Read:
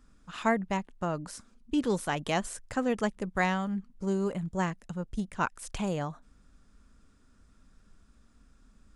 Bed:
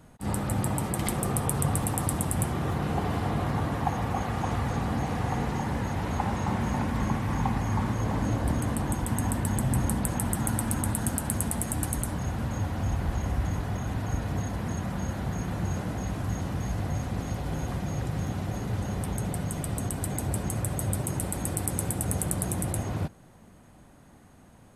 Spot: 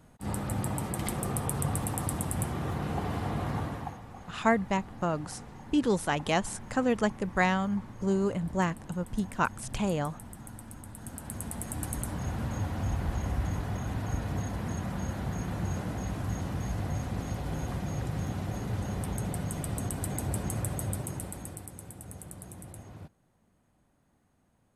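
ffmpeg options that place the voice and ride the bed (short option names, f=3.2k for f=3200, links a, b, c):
-filter_complex "[0:a]adelay=4000,volume=2dB[a];[1:a]volume=11dB,afade=t=out:st=3.57:d=0.44:silence=0.211349,afade=t=in:st=10.92:d=1.41:silence=0.177828,afade=t=out:st=20.63:d=1.08:silence=0.211349[b];[a][b]amix=inputs=2:normalize=0"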